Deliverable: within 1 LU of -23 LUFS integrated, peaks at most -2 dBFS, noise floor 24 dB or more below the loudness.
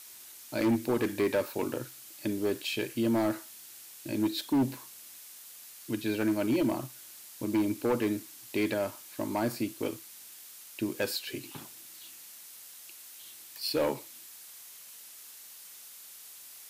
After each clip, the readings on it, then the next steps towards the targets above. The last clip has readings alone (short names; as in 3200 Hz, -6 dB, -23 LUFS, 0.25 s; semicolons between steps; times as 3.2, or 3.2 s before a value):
clipped 1.4%; flat tops at -22.0 dBFS; noise floor -50 dBFS; noise floor target -56 dBFS; loudness -31.5 LUFS; peak -22.0 dBFS; loudness target -23.0 LUFS
-> clip repair -22 dBFS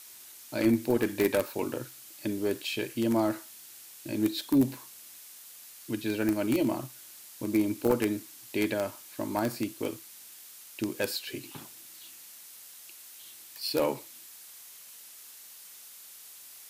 clipped 0.0%; noise floor -50 dBFS; noise floor target -55 dBFS
-> denoiser 6 dB, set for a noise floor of -50 dBFS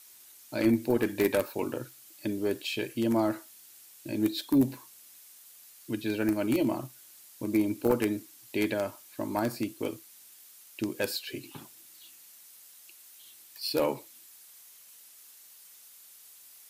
noise floor -54 dBFS; noise floor target -55 dBFS
-> denoiser 6 dB, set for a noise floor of -54 dBFS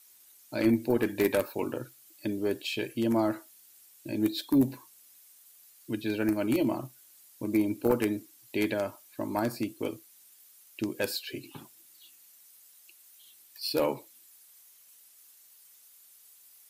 noise floor -58 dBFS; loudness -30.5 LUFS; peak -13.0 dBFS; loudness target -23.0 LUFS
-> gain +7.5 dB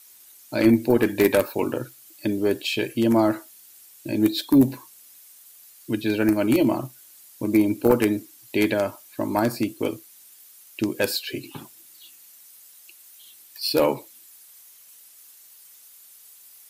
loudness -23.0 LUFS; peak -5.5 dBFS; noise floor -50 dBFS